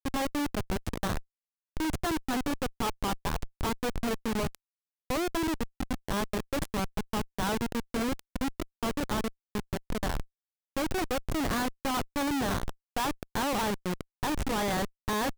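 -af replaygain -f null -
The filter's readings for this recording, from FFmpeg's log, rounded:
track_gain = +13.6 dB
track_peak = 0.053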